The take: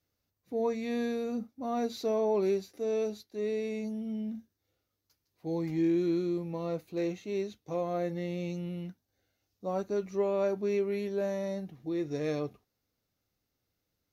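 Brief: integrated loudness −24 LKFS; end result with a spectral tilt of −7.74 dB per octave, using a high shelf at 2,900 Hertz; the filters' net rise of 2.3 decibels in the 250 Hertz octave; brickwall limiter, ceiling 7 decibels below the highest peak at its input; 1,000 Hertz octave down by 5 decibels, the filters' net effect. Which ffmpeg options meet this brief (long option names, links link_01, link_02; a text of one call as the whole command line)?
ffmpeg -i in.wav -af "equalizer=frequency=250:width_type=o:gain=4,equalizer=frequency=1000:width_type=o:gain=-7.5,highshelf=frequency=2900:gain=-8,volume=10.5dB,alimiter=limit=-15.5dB:level=0:latency=1" out.wav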